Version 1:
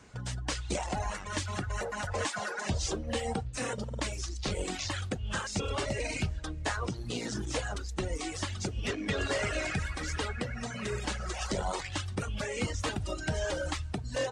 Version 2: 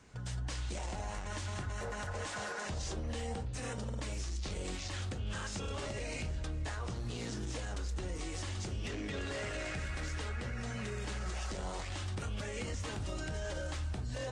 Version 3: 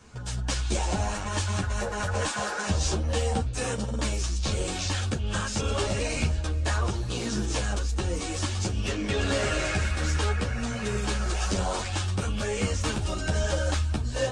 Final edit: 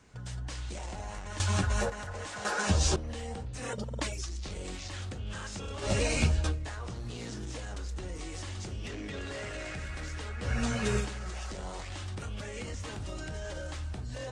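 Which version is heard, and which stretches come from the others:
2
0:01.40–0:01.90: punch in from 3
0:02.45–0:02.96: punch in from 3
0:03.67–0:04.28: punch in from 1, crossfade 0.16 s
0:05.86–0:06.54: punch in from 3, crossfade 0.10 s
0:10.46–0:11.04: punch in from 3, crossfade 0.10 s

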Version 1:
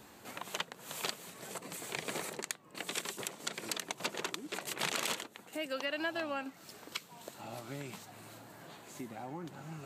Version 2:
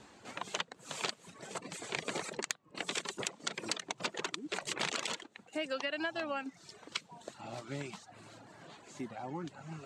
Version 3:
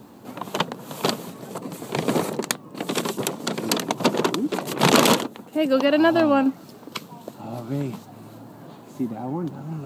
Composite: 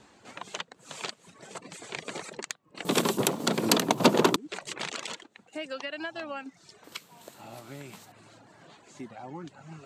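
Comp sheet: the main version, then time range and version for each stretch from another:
2
0:02.85–0:04.36: punch in from 3
0:06.84–0:08.12: punch in from 1

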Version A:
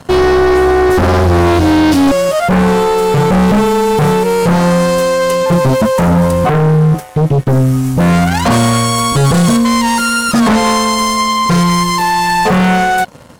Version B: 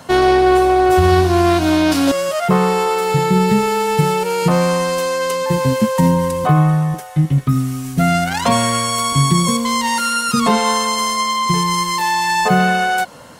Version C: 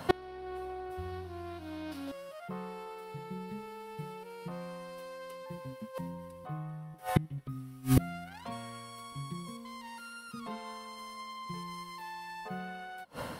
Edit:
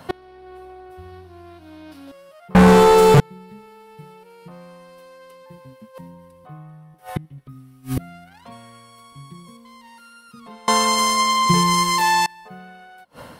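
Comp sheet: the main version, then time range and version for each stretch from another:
C
0:02.55–0:03.20: punch in from A
0:10.68–0:12.26: punch in from B

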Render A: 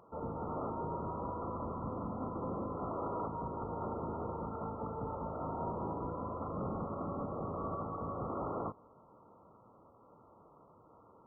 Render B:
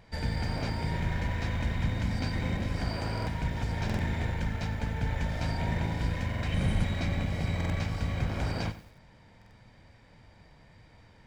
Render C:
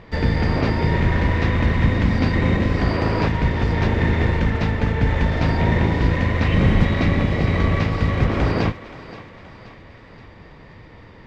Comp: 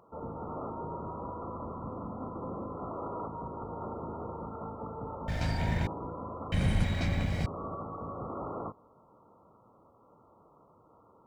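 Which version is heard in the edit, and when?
A
0:05.28–0:05.87: punch in from B
0:06.52–0:07.46: punch in from B
not used: C

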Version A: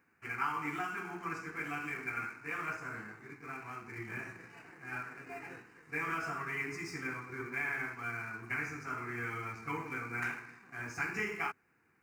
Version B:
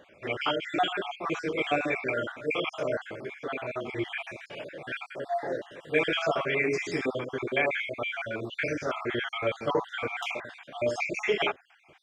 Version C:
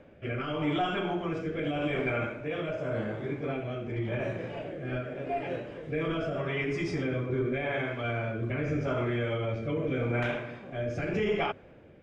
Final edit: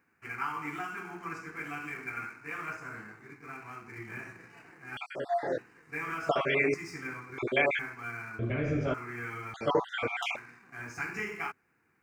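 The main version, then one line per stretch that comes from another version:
A
0:04.97–0:05.58: punch in from B
0:06.29–0:06.74: punch in from B
0:07.38–0:07.79: punch in from B
0:08.39–0:08.94: punch in from C
0:09.54–0:10.36: punch in from B

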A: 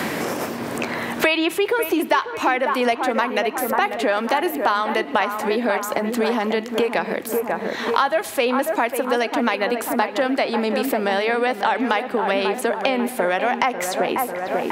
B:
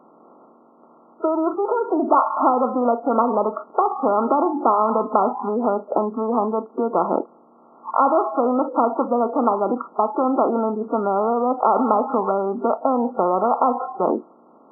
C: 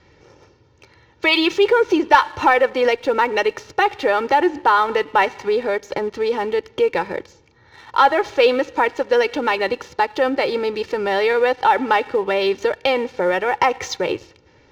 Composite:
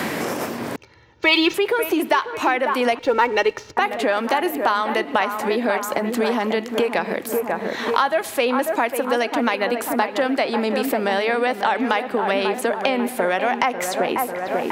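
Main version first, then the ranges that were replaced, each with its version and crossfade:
A
0:00.76–0:01.54: punch in from C
0:02.99–0:03.77: punch in from C
not used: B

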